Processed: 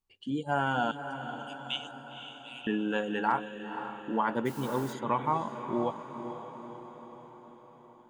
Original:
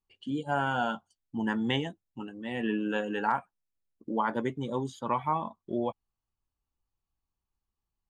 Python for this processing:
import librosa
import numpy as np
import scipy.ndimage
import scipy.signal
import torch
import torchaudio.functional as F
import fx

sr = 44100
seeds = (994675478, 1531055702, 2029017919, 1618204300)

y = fx.steep_highpass(x, sr, hz=2400.0, slope=96, at=(0.91, 2.67))
y = fx.echo_diffused(y, sr, ms=510, feedback_pct=58, wet_db=-9.5)
y = fx.dmg_noise_colour(y, sr, seeds[0], colour='white', level_db=-51.0, at=(4.45, 4.92), fade=0.02)